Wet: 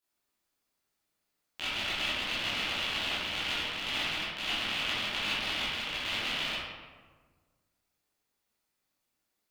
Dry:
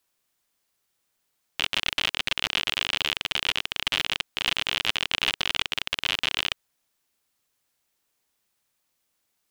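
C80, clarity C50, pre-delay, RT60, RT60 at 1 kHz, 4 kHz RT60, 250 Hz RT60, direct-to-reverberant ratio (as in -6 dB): 0.5 dB, -2.5 dB, 13 ms, 1.5 s, 1.4 s, 0.80 s, 1.7 s, -11.5 dB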